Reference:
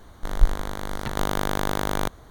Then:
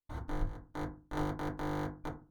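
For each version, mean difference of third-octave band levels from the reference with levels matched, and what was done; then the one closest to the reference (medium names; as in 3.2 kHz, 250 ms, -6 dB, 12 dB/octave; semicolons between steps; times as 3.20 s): 12.5 dB: treble shelf 4.5 kHz -9 dB; compression 12:1, threshold -37 dBFS, peak gain reduction 30 dB; trance gate ".x.xxx..x...xx" 162 bpm -60 dB; FDN reverb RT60 0.31 s, low-frequency decay 1.5×, high-frequency decay 0.4×, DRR -4.5 dB; trim +1 dB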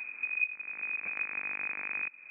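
23.0 dB: bass shelf 180 Hz +10 dB; frequency inversion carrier 2.5 kHz; peaking EQ 250 Hz +9.5 dB 1.4 oct; compression 3:1, threshold -40 dBFS, peak gain reduction 32 dB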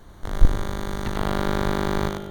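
4.0 dB: octave divider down 1 oct, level +2 dB; on a send: thinning echo 95 ms, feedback 18%, high-pass 350 Hz, level -3.5 dB; on the sum: spring tank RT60 1.8 s, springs 55/60 ms, chirp 25 ms, DRR 10.5 dB; slew-rate limiter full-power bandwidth 350 Hz; trim -1 dB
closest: third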